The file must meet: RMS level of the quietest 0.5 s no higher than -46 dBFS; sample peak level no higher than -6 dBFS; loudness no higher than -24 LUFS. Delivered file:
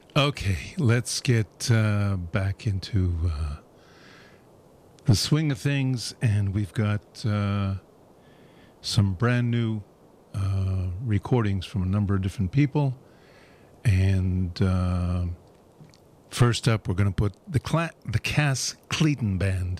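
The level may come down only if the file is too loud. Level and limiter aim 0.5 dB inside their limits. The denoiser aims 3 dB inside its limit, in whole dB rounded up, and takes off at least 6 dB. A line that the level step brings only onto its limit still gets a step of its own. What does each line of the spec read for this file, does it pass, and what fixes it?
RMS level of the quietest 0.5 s -54 dBFS: OK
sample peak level -10.5 dBFS: OK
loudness -25.5 LUFS: OK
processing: none

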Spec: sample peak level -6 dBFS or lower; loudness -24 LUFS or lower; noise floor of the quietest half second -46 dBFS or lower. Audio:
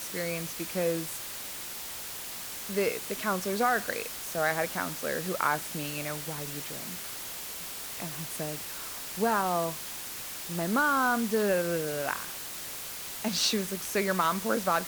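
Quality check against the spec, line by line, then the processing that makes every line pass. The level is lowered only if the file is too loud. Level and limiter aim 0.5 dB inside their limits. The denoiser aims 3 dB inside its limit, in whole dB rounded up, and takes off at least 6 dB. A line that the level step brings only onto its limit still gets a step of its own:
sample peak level -11.5 dBFS: OK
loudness -30.5 LUFS: OK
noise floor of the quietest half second -39 dBFS: fail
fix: denoiser 10 dB, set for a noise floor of -39 dBFS

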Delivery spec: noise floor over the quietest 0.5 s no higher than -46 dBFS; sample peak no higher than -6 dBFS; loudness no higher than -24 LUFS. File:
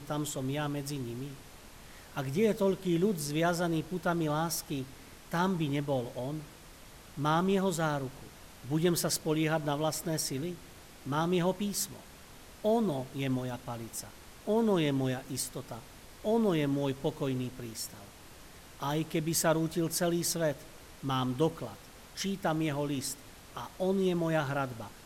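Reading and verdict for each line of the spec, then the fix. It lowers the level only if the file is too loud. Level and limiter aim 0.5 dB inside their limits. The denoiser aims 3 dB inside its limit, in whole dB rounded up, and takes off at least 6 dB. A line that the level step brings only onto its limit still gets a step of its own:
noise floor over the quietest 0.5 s -52 dBFS: OK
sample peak -15.0 dBFS: OK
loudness -32.0 LUFS: OK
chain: none

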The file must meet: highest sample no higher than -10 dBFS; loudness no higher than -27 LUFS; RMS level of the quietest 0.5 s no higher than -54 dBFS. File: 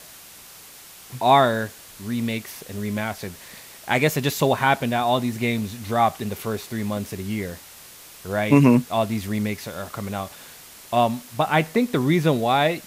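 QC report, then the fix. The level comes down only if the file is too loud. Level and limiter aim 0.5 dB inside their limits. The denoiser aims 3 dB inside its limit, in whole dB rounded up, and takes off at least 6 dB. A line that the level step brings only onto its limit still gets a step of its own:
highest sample -4.5 dBFS: fail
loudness -22.5 LUFS: fail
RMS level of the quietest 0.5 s -45 dBFS: fail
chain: denoiser 7 dB, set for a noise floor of -45 dBFS; gain -5 dB; limiter -10.5 dBFS

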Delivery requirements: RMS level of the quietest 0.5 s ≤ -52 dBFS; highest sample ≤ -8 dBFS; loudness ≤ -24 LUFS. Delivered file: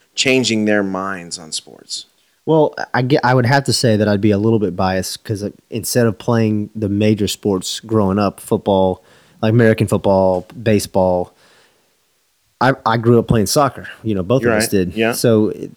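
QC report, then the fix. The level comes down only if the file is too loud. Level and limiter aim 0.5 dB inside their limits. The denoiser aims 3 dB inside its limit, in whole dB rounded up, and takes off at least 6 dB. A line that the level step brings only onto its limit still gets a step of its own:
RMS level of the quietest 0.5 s -61 dBFS: OK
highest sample -1.5 dBFS: fail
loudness -16.0 LUFS: fail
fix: gain -8.5 dB

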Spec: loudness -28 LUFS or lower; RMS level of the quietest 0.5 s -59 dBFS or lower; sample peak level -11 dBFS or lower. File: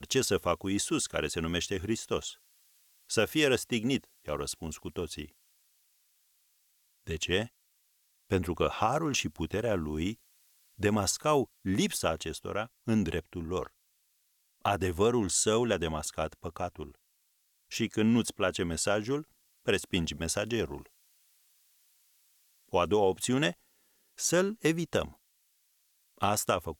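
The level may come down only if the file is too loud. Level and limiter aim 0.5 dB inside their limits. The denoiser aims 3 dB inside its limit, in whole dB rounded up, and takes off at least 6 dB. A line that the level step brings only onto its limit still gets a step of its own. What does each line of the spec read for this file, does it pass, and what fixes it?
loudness -31.0 LUFS: OK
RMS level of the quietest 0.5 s -73 dBFS: OK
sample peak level -13.0 dBFS: OK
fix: none

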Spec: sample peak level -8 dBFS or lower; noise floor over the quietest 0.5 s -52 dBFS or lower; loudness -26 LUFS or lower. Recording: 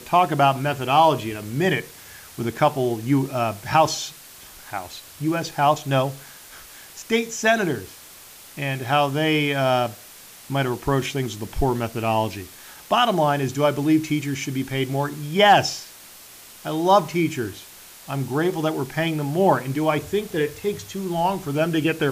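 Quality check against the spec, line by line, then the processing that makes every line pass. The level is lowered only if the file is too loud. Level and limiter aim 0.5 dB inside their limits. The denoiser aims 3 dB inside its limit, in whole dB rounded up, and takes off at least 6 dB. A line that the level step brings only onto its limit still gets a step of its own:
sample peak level -5.5 dBFS: fail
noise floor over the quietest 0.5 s -44 dBFS: fail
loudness -22.0 LUFS: fail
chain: denoiser 7 dB, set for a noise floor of -44 dBFS; gain -4.5 dB

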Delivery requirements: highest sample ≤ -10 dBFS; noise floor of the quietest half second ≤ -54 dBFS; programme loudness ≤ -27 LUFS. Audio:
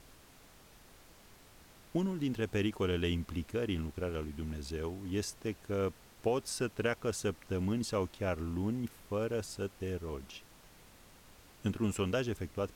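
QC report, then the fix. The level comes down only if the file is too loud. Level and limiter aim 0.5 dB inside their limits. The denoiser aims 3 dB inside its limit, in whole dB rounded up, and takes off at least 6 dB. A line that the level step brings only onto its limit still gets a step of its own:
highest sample -18.5 dBFS: OK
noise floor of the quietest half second -59 dBFS: OK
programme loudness -36.0 LUFS: OK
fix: none

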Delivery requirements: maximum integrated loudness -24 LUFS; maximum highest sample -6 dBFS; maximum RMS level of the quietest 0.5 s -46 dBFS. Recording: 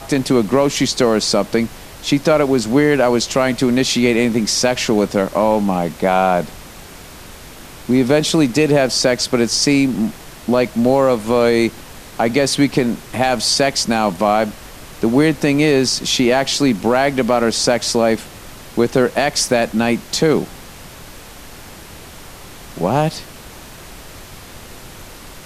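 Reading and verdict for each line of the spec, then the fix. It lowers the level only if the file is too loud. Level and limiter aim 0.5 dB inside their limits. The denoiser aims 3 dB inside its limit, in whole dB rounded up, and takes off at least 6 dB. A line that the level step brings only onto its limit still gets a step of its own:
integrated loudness -16.0 LUFS: fail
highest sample -3.0 dBFS: fail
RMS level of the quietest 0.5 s -37 dBFS: fail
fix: denoiser 6 dB, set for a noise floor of -37 dBFS; gain -8.5 dB

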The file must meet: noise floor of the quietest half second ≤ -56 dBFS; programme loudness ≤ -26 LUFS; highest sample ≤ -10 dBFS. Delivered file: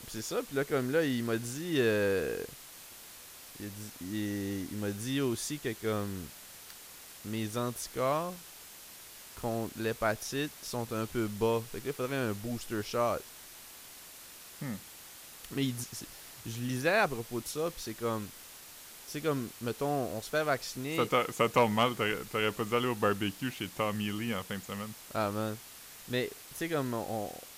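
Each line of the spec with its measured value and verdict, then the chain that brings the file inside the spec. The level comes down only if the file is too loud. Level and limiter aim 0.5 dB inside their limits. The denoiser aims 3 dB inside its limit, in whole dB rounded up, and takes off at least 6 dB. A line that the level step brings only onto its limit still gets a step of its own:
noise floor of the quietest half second -50 dBFS: fail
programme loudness -33.5 LUFS: OK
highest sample -14.5 dBFS: OK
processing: denoiser 9 dB, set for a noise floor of -50 dBFS

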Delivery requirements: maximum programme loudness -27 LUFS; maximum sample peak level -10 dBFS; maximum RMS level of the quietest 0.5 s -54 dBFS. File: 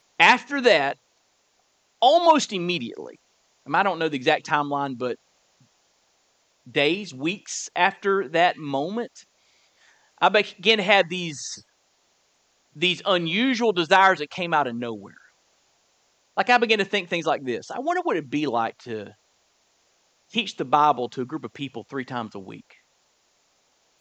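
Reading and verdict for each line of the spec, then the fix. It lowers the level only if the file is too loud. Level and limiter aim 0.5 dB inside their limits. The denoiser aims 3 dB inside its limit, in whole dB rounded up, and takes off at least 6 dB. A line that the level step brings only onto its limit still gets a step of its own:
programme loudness -22.5 LUFS: fail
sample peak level -2.0 dBFS: fail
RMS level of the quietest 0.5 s -67 dBFS: OK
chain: gain -5 dB; limiter -10.5 dBFS

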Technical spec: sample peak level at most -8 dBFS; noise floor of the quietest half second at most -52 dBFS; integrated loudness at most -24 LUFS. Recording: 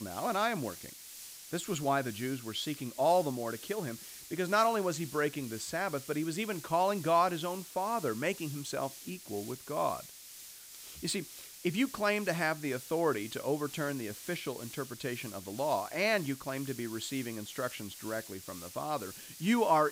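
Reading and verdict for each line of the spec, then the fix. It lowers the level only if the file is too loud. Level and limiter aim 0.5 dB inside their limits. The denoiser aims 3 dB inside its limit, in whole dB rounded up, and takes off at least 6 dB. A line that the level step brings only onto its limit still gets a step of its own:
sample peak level -14.5 dBFS: OK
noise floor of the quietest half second -50 dBFS: fail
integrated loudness -34.0 LUFS: OK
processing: denoiser 6 dB, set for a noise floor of -50 dBFS

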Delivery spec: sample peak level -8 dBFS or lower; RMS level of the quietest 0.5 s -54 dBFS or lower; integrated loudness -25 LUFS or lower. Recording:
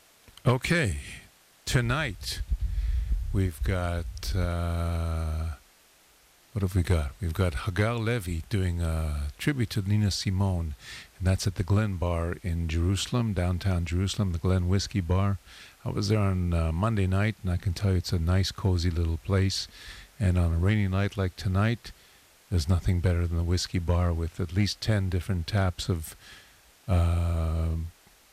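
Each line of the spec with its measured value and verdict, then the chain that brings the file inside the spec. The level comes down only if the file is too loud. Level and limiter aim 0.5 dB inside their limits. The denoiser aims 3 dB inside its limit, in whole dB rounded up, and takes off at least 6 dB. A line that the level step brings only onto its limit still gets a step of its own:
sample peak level -15.0 dBFS: OK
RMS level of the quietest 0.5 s -60 dBFS: OK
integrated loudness -28.0 LUFS: OK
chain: none

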